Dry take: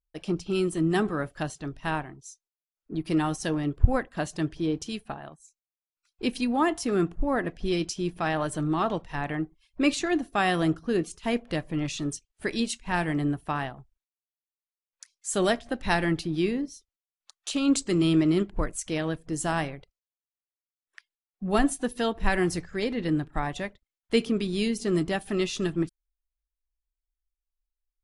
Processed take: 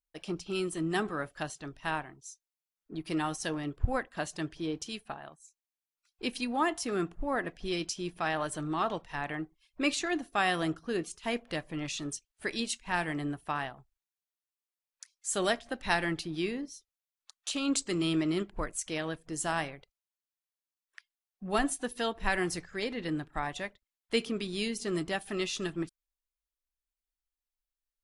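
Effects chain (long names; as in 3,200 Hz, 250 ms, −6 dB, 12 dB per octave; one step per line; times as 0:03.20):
low-shelf EQ 470 Hz −8.5 dB
level −1.5 dB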